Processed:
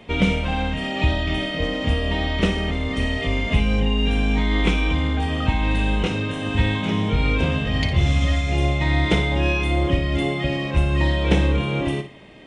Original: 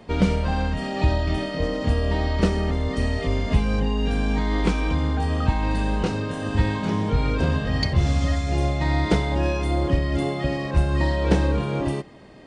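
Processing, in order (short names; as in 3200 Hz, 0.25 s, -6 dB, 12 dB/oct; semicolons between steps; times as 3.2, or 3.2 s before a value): band shelf 2700 Hz +8.5 dB 1 oct; notch 4600 Hz, Q 8; on a send: flutter echo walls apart 9.8 m, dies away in 0.32 s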